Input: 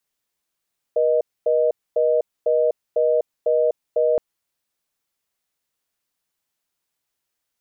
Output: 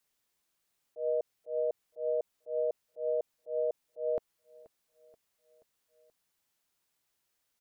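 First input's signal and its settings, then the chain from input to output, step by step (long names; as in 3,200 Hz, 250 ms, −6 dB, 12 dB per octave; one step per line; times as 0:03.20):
call progress tone reorder tone, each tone −18 dBFS 3.22 s
brickwall limiter −23.5 dBFS
volume swells 127 ms
repeating echo 480 ms, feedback 58%, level −21.5 dB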